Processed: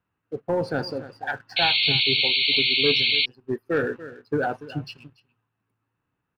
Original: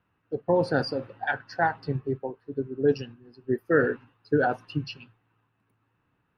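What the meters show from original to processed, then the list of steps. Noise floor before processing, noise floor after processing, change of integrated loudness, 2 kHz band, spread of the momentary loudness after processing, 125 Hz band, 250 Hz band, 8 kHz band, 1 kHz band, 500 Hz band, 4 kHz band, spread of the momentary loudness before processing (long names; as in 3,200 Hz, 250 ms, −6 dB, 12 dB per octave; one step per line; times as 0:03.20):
−74 dBFS, −80 dBFS, +6.5 dB, +6.5 dB, 17 LU, −1.5 dB, −1.5 dB, can't be measured, −1.5 dB, −1.5 dB, +24.0 dB, 13 LU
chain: single-tap delay 287 ms −17 dB
leveller curve on the samples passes 1
sound drawn into the spectrogram noise, 0:01.56–0:03.26, 2,100–4,500 Hz −17 dBFS
level −4.5 dB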